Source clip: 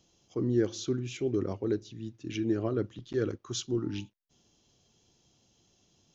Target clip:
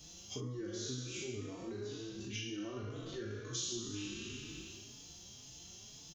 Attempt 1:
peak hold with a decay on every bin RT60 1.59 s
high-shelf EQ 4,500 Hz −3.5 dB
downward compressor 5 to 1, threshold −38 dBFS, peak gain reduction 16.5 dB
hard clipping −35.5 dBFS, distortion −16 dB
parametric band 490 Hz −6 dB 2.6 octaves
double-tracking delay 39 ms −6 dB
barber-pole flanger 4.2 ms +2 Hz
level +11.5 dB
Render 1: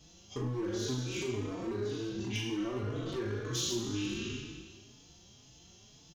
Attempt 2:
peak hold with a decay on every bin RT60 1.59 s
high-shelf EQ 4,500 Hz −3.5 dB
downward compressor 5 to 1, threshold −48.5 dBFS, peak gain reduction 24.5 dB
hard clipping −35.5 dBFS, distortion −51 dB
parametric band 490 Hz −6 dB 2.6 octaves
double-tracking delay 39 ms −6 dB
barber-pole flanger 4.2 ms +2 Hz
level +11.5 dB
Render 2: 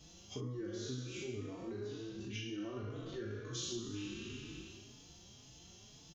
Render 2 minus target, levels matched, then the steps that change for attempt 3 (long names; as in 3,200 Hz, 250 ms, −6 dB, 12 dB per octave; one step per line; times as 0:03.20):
8,000 Hz band −5.0 dB
change: high-shelf EQ 4,500 Hz +7.5 dB